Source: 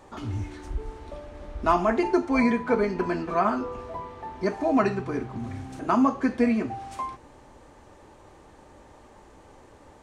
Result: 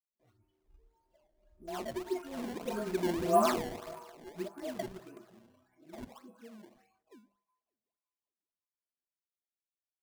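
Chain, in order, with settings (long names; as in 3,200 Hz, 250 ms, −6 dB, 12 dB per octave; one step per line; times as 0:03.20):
every frequency bin delayed by itself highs late, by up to 892 ms
source passing by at 0:03.38, 11 m/s, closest 2.8 metres
noise gate with hold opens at −59 dBFS
on a send: feedback echo with a high-pass in the loop 187 ms, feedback 75%, high-pass 360 Hz, level −18.5 dB
on the sum: sample-and-hold swept by an LFO 20×, swing 160% 1.7 Hz
noise reduction from a noise print of the clip's start 12 dB
mains-hum notches 50/100/150/200 Hz
hollow resonant body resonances 240/360/650 Hz, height 6 dB, ringing for 25 ms
in parallel at −11 dB: bit-depth reduction 6 bits, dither none
on the sum: level −6 dB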